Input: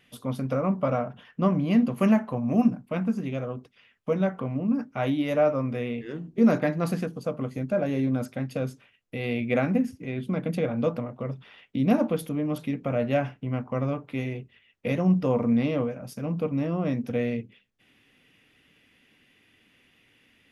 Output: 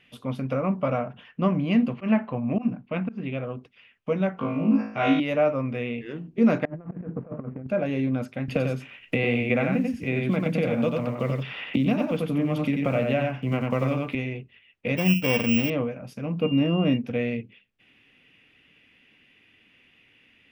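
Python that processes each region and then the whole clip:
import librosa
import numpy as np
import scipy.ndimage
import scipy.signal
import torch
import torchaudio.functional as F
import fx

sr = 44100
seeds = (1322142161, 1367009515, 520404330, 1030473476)

y = fx.chain(x, sr, fx.lowpass(hz=4300.0, slope=24),
    fx.auto_swell(attack_ms=128.0), at=(1.93, 3.46))
y = fx.chain(y, sr, fx.lowpass(hz=6400.0, slope=24),
    fx.bass_treble(bass_db=1, treble_db=6),
    fx.room_flutter(wall_m=3.2, rt60_s=0.61), at=(4.37, 5.2))
y = fx.chain(y, sr, fx.median_filter(points=25),
    fx.lowpass(hz=1600.0, slope=24),
    fx.over_compress(threshold_db=-34.0, ratio=-0.5), at=(6.65, 7.67))
y = fx.chain(y, sr, fx.block_float(bits=7),
    fx.echo_single(ms=91, db=-3.5),
    fx.band_squash(depth_pct=100), at=(8.48, 14.15))
y = fx.chain(y, sr, fx.sample_sort(block=16),
    fx.resample_bad(factor=2, down='filtered', up='zero_stuff'), at=(14.97, 15.7))
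y = fx.peak_eq(y, sr, hz=250.0, db=6.5, octaves=1.8, at=(16.41, 16.96), fade=0.02)
y = fx.dmg_tone(y, sr, hz=2800.0, level_db=-41.0, at=(16.41, 16.96), fade=0.02)
y = fx.lowpass(y, sr, hz=3400.0, slope=6)
y = fx.peak_eq(y, sr, hz=2600.0, db=8.0, octaves=0.72)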